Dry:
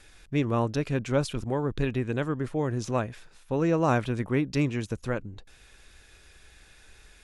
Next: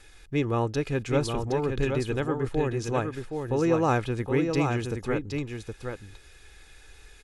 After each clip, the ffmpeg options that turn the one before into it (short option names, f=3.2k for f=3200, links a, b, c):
-af "aecho=1:1:2.4:0.37,aecho=1:1:768:0.531"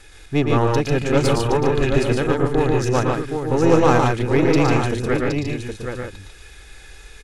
-af "aeval=exprs='0.266*(cos(1*acos(clip(val(0)/0.266,-1,1)))-cos(1*PI/2))+0.0237*(cos(6*acos(clip(val(0)/0.266,-1,1)))-cos(6*PI/2))':c=same,aecho=1:1:113.7|145.8:0.562|0.631,volume=6.5dB"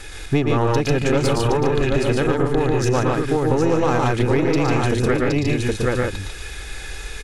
-filter_complex "[0:a]asplit=2[a][b];[b]alimiter=limit=-12dB:level=0:latency=1,volume=-2dB[c];[a][c]amix=inputs=2:normalize=0,acompressor=threshold=-20dB:ratio=6,volume=5dB"